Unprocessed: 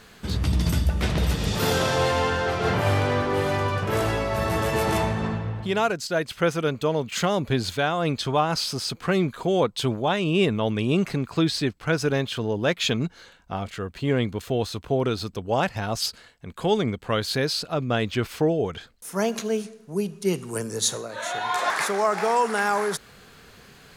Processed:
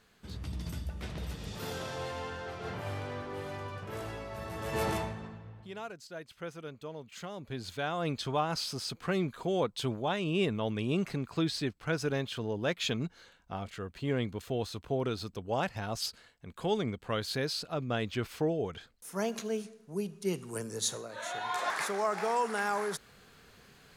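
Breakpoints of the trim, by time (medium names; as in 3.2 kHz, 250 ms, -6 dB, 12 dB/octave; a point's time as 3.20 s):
4.57 s -16 dB
4.83 s -6.5 dB
5.31 s -19 dB
7.35 s -19 dB
7.96 s -8.5 dB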